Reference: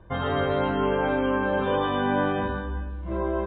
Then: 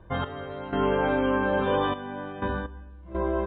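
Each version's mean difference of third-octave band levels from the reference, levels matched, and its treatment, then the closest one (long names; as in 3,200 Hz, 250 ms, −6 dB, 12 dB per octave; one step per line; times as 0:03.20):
3.5 dB: gate pattern "x..xxxxx.." 62 BPM −12 dB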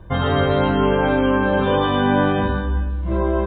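1.0 dB: bass and treble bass +5 dB, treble +9 dB
level +5.5 dB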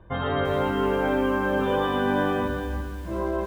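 5.0 dB: feedback echo at a low word length 345 ms, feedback 35%, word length 7 bits, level −10 dB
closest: second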